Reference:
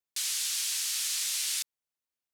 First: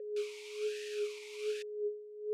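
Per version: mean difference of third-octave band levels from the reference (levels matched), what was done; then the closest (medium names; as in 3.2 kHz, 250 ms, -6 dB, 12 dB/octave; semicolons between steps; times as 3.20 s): 11.0 dB: peak limiter -27 dBFS, peak gain reduction 7.5 dB; whistle 420 Hz -39 dBFS; talking filter e-u 1.2 Hz; trim +9.5 dB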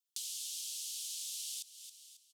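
6.5 dB: Chebyshev high-pass 3 kHz, order 4; feedback delay 272 ms, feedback 31%, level -19 dB; compression 3:1, threshold -48 dBFS, peak gain reduction 14 dB; trim +3.5 dB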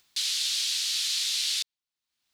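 4.0 dB: dynamic bell 3.5 kHz, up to +4 dB, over -47 dBFS, Q 0.98; upward compressor, threshold -44 dBFS; ten-band graphic EQ 500 Hz -7 dB, 4 kHz +8 dB, 16 kHz -7 dB; trim -2 dB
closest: third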